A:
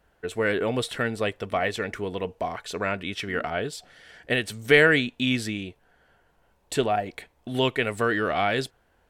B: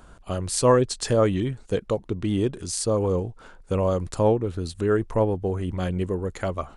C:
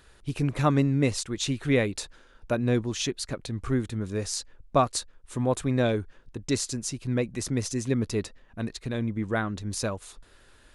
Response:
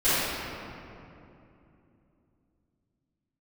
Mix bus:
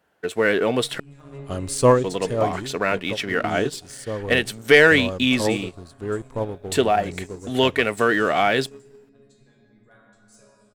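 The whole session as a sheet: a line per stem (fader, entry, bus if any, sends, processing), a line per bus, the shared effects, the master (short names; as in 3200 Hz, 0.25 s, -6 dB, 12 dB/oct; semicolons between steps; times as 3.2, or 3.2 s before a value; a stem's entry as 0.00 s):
+1.5 dB, 0.00 s, muted 1–2.04, no send, HPF 150 Hz
+3.0 dB, 1.20 s, no send, de-esser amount 45%; high shelf 7900 Hz +5 dB; upward expander 1.5:1, over -29 dBFS; auto duck -9 dB, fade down 0.20 s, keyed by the first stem
-13.5 dB, 0.55 s, send -14 dB, reverb removal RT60 2 s; bell 7700 Hz +11 dB 0.29 oct; resonator bank C#3 fifth, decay 0.23 s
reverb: on, RT60 2.8 s, pre-delay 4 ms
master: sample leveller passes 1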